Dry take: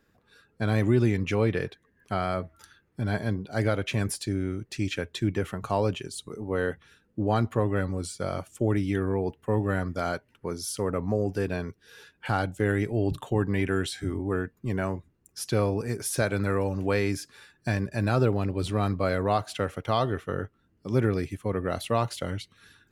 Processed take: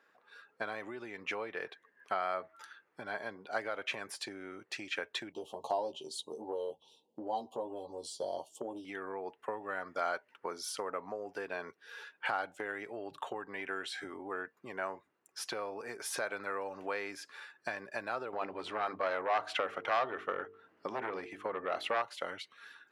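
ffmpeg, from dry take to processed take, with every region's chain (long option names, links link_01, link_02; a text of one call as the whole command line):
ffmpeg -i in.wav -filter_complex "[0:a]asettb=1/sr,asplit=3[link_01][link_02][link_03];[link_01]atrim=end=5.324[link_04];[link_02]atrim=start=5.32:end=8.85,asetpts=PTS-STARTPTS,afade=type=in:duration=0.004:curve=qsin,afade=type=out:start_time=3.526:duration=0.004:curve=qsin,asuperstop=centerf=1700:order=12:qfactor=0.86,asplit=2[link_05][link_06];[link_06]adelay=13,volume=-3.5dB[link_07];[link_05][link_07]amix=inputs=2:normalize=0,atrim=end_sample=155673[link_08];[link_03]atrim=start=8.846[link_09];[link_04][link_08]acrossfade=duration=0.004:curve1=hsin:curve2=qsin[link_10];[link_10][link_09]acrossfade=duration=0.004:curve1=qsin:curve2=hsin,asettb=1/sr,asplit=3[link_11][link_12][link_13];[link_11]atrim=end=18.334[link_14];[link_12]atrim=start=18.33:end=22.02,asetpts=PTS-STARTPTS,afade=type=in:duration=0.004:curve=qsin,afade=type=out:start_time=3.686:duration=0.004:curve=qsin,lowpass=frequency=3300:poles=1,bandreject=frequency=50:width_type=h:width=6,bandreject=frequency=100:width_type=h:width=6,bandreject=frequency=150:width_type=h:width=6,bandreject=frequency=200:width_type=h:width=6,bandreject=frequency=250:width_type=h:width=6,bandreject=frequency=300:width_type=h:width=6,bandreject=frequency=350:width_type=h:width=6,bandreject=frequency=400:width_type=h:width=6,bandreject=frequency=450:width_type=h:width=6,aeval=exprs='0.251*sin(PI/2*2.24*val(0)/0.251)':channel_layout=same[link_15];[link_13]atrim=start=22.016[link_16];[link_14][link_15]acrossfade=duration=0.004:curve1=hsin:curve2=qsin[link_17];[link_17][link_16]acrossfade=duration=0.004:curve1=qsin:curve2=hsin,lowpass=frequency=1200:poles=1,acompressor=threshold=-31dB:ratio=10,highpass=850,volume=8.5dB" out.wav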